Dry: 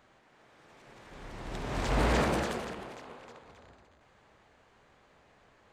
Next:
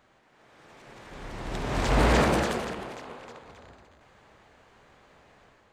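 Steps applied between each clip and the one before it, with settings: AGC gain up to 5.5 dB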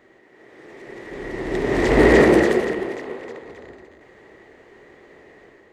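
one diode to ground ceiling -10 dBFS; small resonant body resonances 370/1900 Hz, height 17 dB, ringing for 20 ms; gain +1 dB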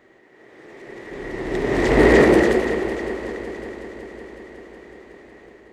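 multi-head echo 0.185 s, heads all three, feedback 68%, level -20 dB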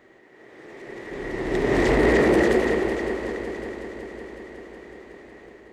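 limiter -10 dBFS, peak gain reduction 8 dB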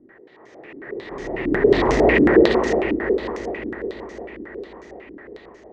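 stepped low-pass 11 Hz 290–6100 Hz

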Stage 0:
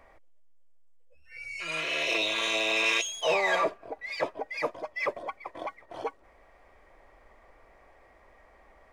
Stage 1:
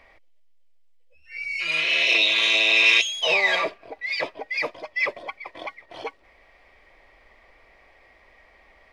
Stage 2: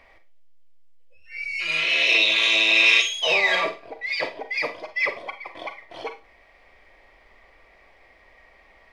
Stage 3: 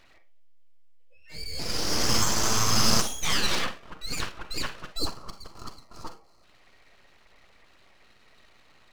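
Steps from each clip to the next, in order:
band shelf 3200 Hz +10 dB
Schroeder reverb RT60 0.3 s, combs from 33 ms, DRR 8 dB
full-wave rectifier; spectral gain 4.97–6.44, 1400–4000 Hz -13 dB; gain -2 dB

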